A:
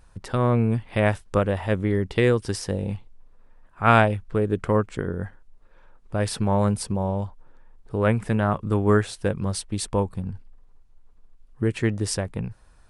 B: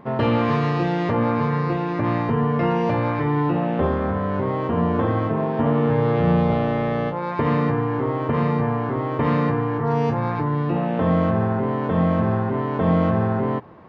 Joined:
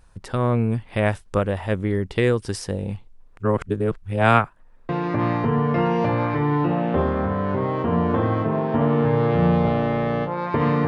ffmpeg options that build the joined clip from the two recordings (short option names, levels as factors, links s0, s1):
-filter_complex "[0:a]apad=whole_dur=10.87,atrim=end=10.87,asplit=2[s0][s1];[s0]atrim=end=3.372[s2];[s1]atrim=start=3.368:end=4.892,asetpts=PTS-STARTPTS,areverse[s3];[1:a]atrim=start=1.738:end=7.72[s4];[s2][s3]acrossfade=d=0.004:c1=hsin:c2=hsin[s5];[s5][s4]acrossfade=d=0.004:c1=hsin:c2=hsin"